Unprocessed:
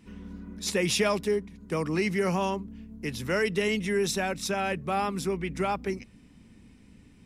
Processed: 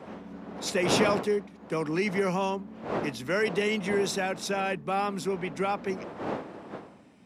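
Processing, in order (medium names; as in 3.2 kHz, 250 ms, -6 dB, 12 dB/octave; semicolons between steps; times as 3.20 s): wind noise 640 Hz -36 dBFS; high-pass 170 Hz 12 dB/octave; treble shelf 8.1 kHz -6.5 dB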